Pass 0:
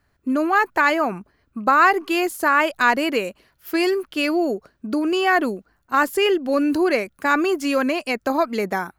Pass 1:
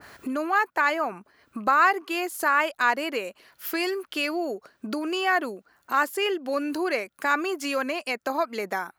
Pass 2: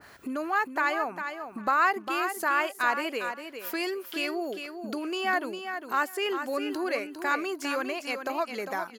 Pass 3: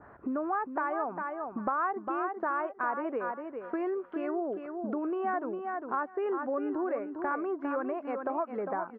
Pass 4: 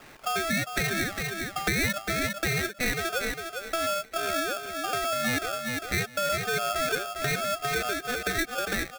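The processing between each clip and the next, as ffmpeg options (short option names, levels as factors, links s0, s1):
-af "highpass=f=620:p=1,acompressor=mode=upward:threshold=0.0794:ratio=2.5,adynamicequalizer=threshold=0.0282:dfrequency=1600:dqfactor=0.7:tfrequency=1600:tqfactor=0.7:attack=5:release=100:ratio=0.375:range=2:mode=cutabove:tftype=highshelf,volume=0.708"
-af "aecho=1:1:403|806|1209:0.398|0.0717|0.0129,volume=0.631"
-af "lowpass=f=1300:w=0.5412,lowpass=f=1300:w=1.3066,acompressor=threshold=0.0251:ratio=2.5,volume=1.33"
-af "aeval=exprs='val(0)*sgn(sin(2*PI*990*n/s))':c=same,volume=1.5"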